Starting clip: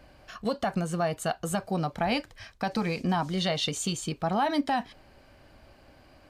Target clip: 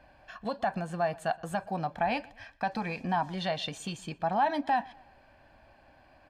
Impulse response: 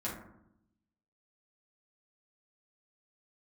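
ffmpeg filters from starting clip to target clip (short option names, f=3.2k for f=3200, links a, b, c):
-filter_complex "[0:a]bass=f=250:g=-8,treble=f=4k:g=-12,aecho=1:1:1.2:0.52,asplit=2[a][b];[b]adelay=121,lowpass=f=4.7k:p=1,volume=-23dB,asplit=2[c][d];[d]adelay=121,lowpass=f=4.7k:p=1,volume=0.42,asplit=2[e][f];[f]adelay=121,lowpass=f=4.7k:p=1,volume=0.42[g];[a][c][e][g]amix=inputs=4:normalize=0,volume=-2dB"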